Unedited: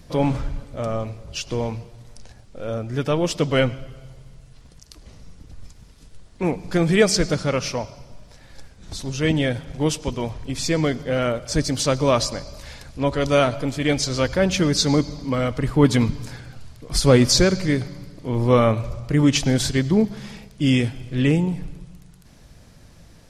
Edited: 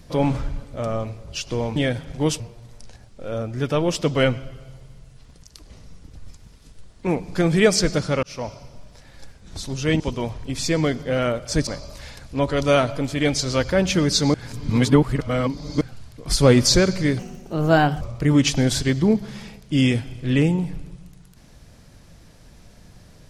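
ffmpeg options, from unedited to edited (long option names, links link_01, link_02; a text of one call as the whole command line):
ffmpeg -i in.wav -filter_complex "[0:a]asplit=10[link_01][link_02][link_03][link_04][link_05][link_06][link_07][link_08][link_09][link_10];[link_01]atrim=end=1.762[link_11];[link_02]atrim=start=9.358:end=10.002[link_12];[link_03]atrim=start=1.758:end=7.59,asetpts=PTS-STARTPTS,afade=type=out:start_time=5.828:duration=0.004:curve=hsin[link_13];[link_04]atrim=start=7.59:end=9.362,asetpts=PTS-STARTPTS,afade=type=in:duration=0.27[link_14];[link_05]atrim=start=9.998:end=11.672[link_15];[link_06]atrim=start=12.308:end=14.982[link_16];[link_07]atrim=start=14.978:end=16.452,asetpts=PTS-STARTPTS,areverse[link_17];[link_08]atrim=start=16.448:end=17.834[link_18];[link_09]atrim=start=17.83:end=18.9,asetpts=PTS-STARTPTS,asetrate=57330,aresample=44100[link_19];[link_10]atrim=start=18.896[link_20];[link_11][link_12]acrossfade=duration=0.004:curve1=hsin:curve2=hsin[link_21];[link_13][link_14]concat=n=2:v=0:a=1[link_22];[link_21][link_22]acrossfade=duration=0.004:curve1=hsin:curve2=hsin[link_23];[link_23][link_15]acrossfade=duration=0.004:curve1=hsin:curve2=hsin[link_24];[link_24][link_16]acrossfade=duration=0.004:curve1=hsin:curve2=hsin[link_25];[link_25][link_17]acrossfade=duration=0.004:curve1=hsin:curve2=hsin[link_26];[link_26][link_18]acrossfade=duration=0.004:curve1=hsin:curve2=hsin[link_27];[link_27][link_19]acrossfade=duration=0.004:curve1=hsin:curve2=hsin[link_28];[link_28][link_20]acrossfade=duration=0.004:curve1=hsin:curve2=hsin" out.wav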